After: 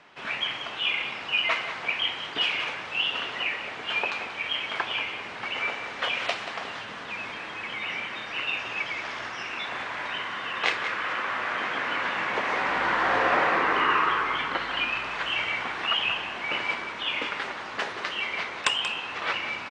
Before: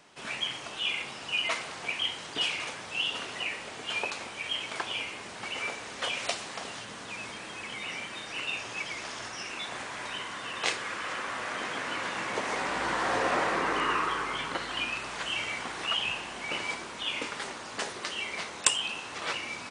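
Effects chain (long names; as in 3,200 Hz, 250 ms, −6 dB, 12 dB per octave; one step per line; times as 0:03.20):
low-pass filter 2,500 Hz 12 dB per octave
tilt shelving filter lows −4.5 dB, about 860 Hz
on a send: single-tap delay 183 ms −10.5 dB
on the sum: level +4.5 dB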